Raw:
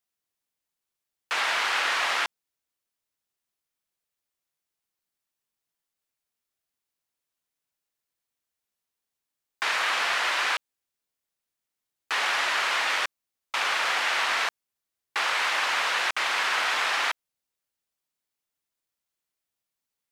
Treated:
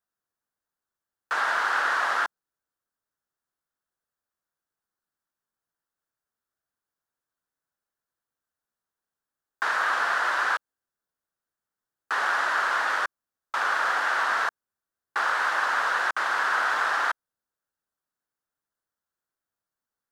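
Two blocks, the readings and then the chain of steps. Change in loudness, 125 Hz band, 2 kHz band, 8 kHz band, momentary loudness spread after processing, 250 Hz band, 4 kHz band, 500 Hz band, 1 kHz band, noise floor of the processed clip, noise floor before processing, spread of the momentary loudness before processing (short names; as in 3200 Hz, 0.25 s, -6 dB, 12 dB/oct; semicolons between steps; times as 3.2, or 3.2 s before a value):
0.0 dB, n/a, +1.0 dB, -7.0 dB, 7 LU, 0.0 dB, -9.0 dB, +0.5 dB, +3.0 dB, under -85 dBFS, under -85 dBFS, 7 LU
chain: resonant high shelf 1900 Hz -6.5 dB, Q 3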